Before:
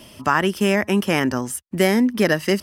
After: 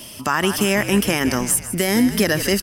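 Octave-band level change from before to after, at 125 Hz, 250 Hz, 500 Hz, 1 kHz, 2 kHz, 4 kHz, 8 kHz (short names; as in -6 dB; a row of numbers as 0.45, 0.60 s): +1.0, +0.5, -1.0, -1.5, +0.5, +4.0, +10.0 dB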